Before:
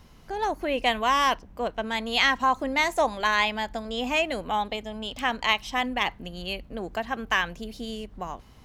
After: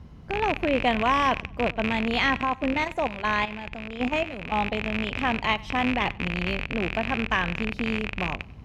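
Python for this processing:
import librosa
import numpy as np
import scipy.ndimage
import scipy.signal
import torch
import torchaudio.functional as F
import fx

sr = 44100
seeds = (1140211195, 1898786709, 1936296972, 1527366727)

p1 = fx.rattle_buzz(x, sr, strikes_db=-43.0, level_db=-12.0)
p2 = scipy.signal.sosfilt(scipy.signal.butter(2, 84.0, 'highpass', fs=sr, output='sos'), p1)
p3 = fx.riaa(p2, sr, side='playback')
p4 = fx.level_steps(p3, sr, step_db=12, at=(2.41, 4.58))
y = p4 + fx.echo_feedback(p4, sr, ms=94, feedback_pct=43, wet_db=-23, dry=0)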